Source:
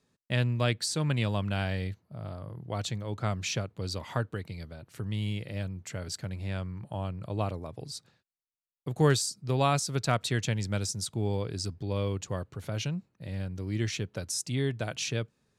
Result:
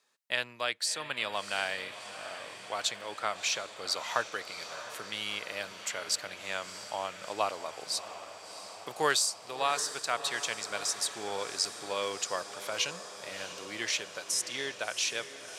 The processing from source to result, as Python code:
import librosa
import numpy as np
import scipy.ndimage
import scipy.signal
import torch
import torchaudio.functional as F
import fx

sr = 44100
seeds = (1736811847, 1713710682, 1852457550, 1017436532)

p1 = scipy.signal.sosfilt(scipy.signal.butter(2, 800.0, 'highpass', fs=sr, output='sos'), x)
p2 = fx.rider(p1, sr, range_db=4, speed_s=0.5)
p3 = p2 + fx.echo_diffused(p2, sr, ms=677, feedback_pct=72, wet_db=-12, dry=0)
y = F.gain(torch.from_numpy(p3), 4.0).numpy()